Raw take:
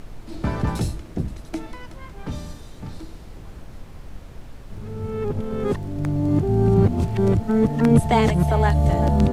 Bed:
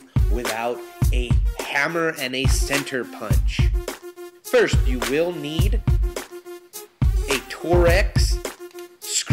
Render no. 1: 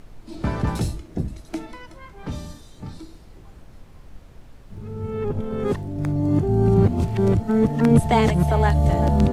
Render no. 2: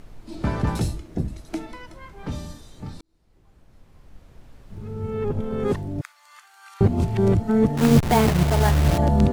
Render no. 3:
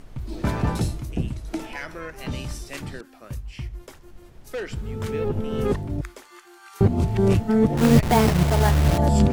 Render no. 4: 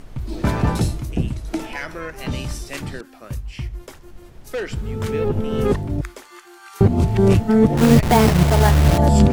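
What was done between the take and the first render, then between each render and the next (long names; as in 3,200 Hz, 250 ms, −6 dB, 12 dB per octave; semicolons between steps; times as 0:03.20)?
noise reduction from a noise print 6 dB
0:03.01–0:04.83: fade in; 0:06.01–0:06.81: Butterworth high-pass 1,200 Hz; 0:07.77–0:08.98: hold until the input has moved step −20 dBFS
mix in bed −14.5 dB
level +4.5 dB; brickwall limiter −3 dBFS, peak gain reduction 3 dB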